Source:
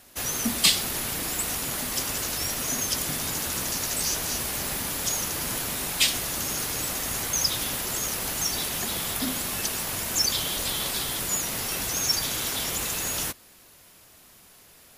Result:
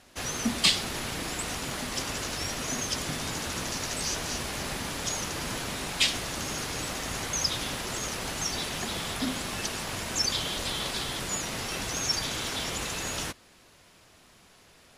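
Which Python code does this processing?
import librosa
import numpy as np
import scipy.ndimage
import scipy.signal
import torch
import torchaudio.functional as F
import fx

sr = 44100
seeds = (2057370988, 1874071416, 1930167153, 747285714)

y = fx.air_absorb(x, sr, metres=64.0)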